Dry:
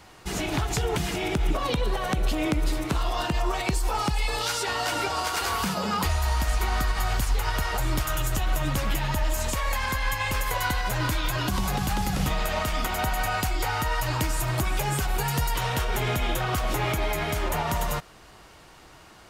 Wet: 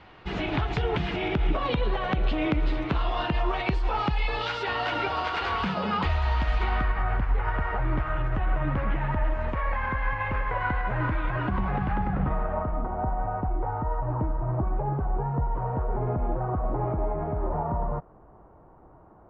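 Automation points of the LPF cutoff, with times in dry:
LPF 24 dB/oct
6.63 s 3400 Hz
7.04 s 2000 Hz
11.89 s 2000 Hz
12.84 s 1000 Hz

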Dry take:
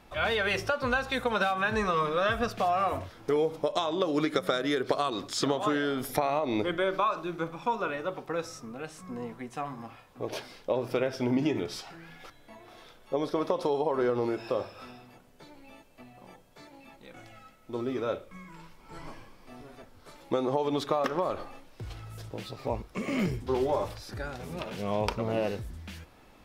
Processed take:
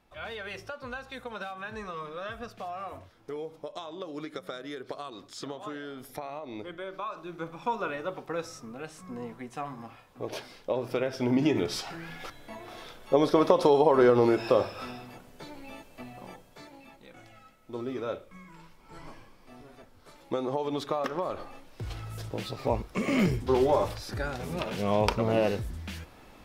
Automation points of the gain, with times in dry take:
6.9 s -11 dB
7.67 s -1 dB
11.04 s -1 dB
11.94 s +7 dB
16.16 s +7 dB
17.14 s -2.5 dB
21.28 s -2.5 dB
21.94 s +4 dB

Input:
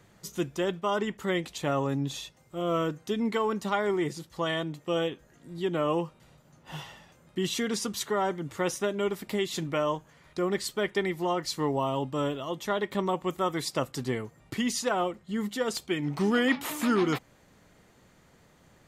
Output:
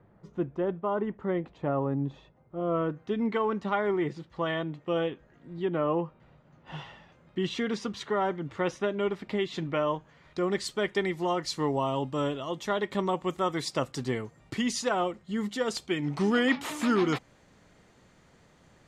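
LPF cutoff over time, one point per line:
2.57 s 1100 Hz
3.23 s 2600 Hz
5.55 s 2600 Hz
5.96 s 1600 Hz
6.74 s 3300 Hz
9.92 s 3300 Hz
10.68 s 8100 Hz

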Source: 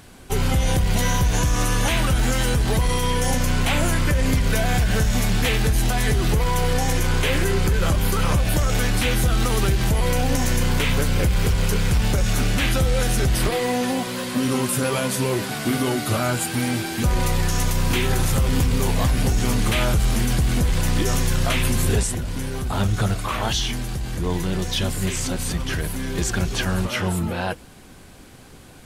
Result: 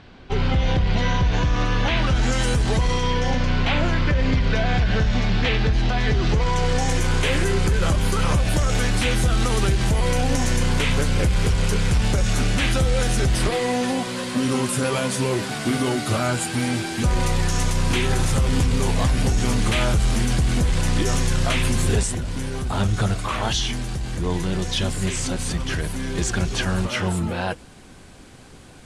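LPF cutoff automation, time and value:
LPF 24 dB/oct
1.91 s 4400 Hz
2.52 s 9800 Hz
3.31 s 4700 Hz
5.99 s 4700 Hz
7.06 s 10000 Hz

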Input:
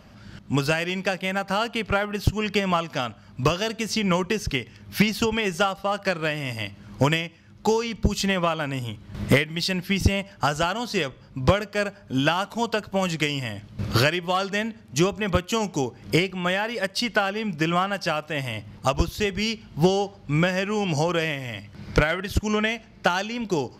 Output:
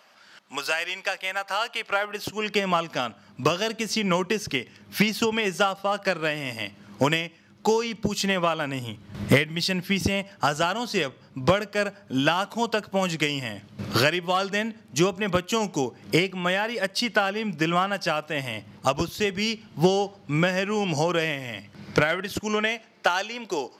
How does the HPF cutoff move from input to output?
1.77 s 740 Hz
2.76 s 180 Hz
8.55 s 180 Hz
9.48 s 72 Hz
10.02 s 150 Hz
22.01 s 150 Hz
23.08 s 410 Hz

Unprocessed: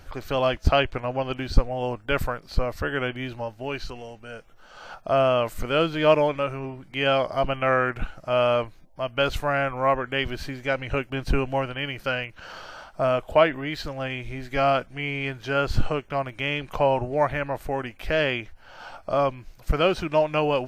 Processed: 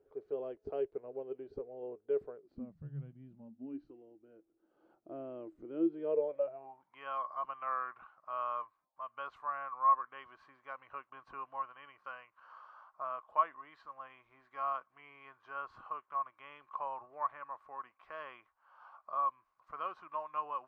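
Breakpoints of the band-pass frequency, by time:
band-pass, Q 14
2.39 s 420 Hz
2.88 s 130 Hz
3.95 s 330 Hz
5.85 s 330 Hz
7.02 s 1100 Hz

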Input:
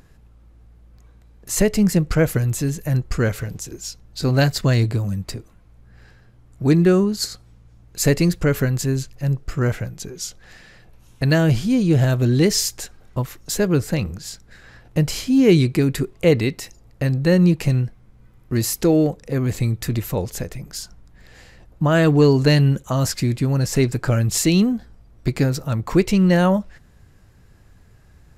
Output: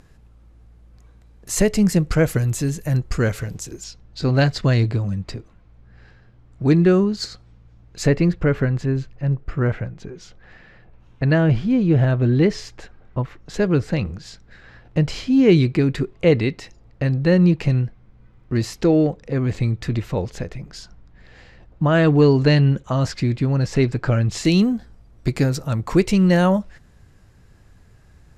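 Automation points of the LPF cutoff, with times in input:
11000 Hz
from 3.84 s 4600 Hz
from 8.07 s 2400 Hz
from 13.54 s 4100 Hz
from 24.45 s 11000 Hz

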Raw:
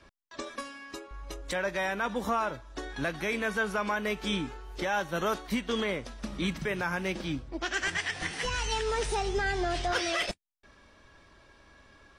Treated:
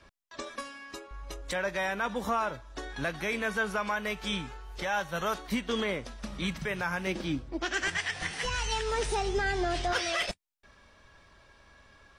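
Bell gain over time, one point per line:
bell 310 Hz 0.8 oct
-3.5 dB
from 3.78 s -10.5 dB
from 5.38 s -1 dB
from 6.16 s -7 dB
from 7.07 s +2.5 dB
from 7.9 s -6 dB
from 8.92 s +1 dB
from 9.93 s -6 dB

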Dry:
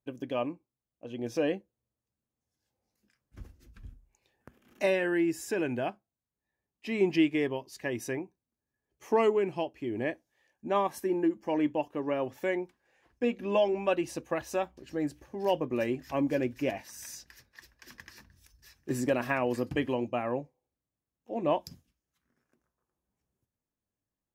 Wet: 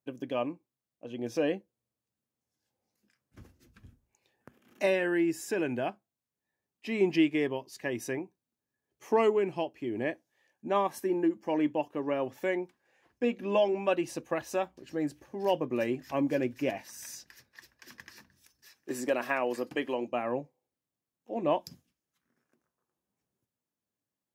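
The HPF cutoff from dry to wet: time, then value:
18.04 s 110 Hz
18.91 s 320 Hz
19.96 s 320 Hz
20.38 s 130 Hz

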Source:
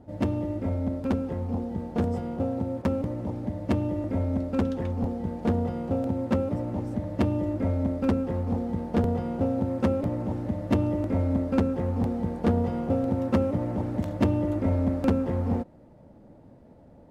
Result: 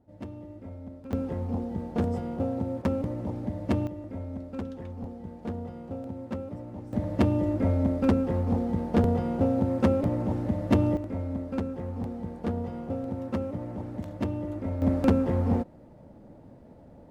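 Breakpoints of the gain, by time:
-13.5 dB
from 1.13 s -1 dB
from 3.87 s -9.5 dB
from 6.93 s +1.5 dB
from 10.97 s -7 dB
from 14.82 s +1.5 dB

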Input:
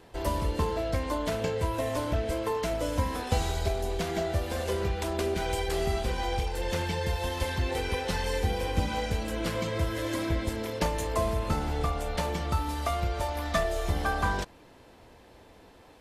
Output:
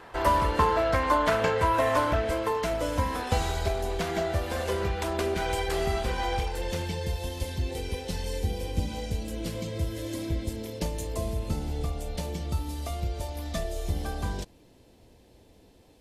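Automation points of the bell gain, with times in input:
bell 1300 Hz 1.9 oct
1.96 s +13.5 dB
2.54 s +4 dB
6.43 s +4 dB
6.75 s -5.5 dB
7.45 s -13.5 dB

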